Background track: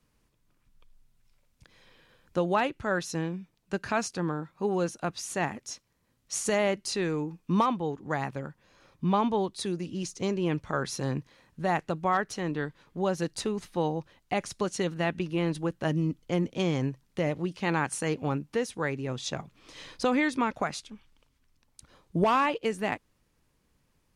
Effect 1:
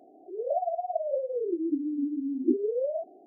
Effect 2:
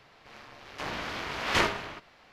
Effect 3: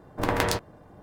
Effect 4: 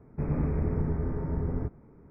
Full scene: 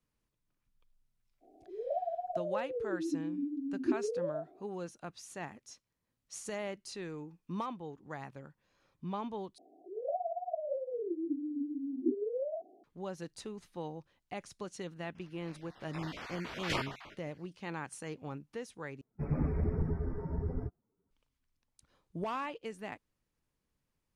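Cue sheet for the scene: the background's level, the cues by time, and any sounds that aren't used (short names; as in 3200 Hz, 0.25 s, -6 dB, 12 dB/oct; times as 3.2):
background track -13 dB
1.4 add 1 -6.5 dB, fades 0.05 s
9.58 replace with 1 -7 dB
15.15 add 2 -8.5 dB + random spectral dropouts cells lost 28%
19.01 replace with 4 -0.5 dB + per-bin expansion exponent 2
not used: 3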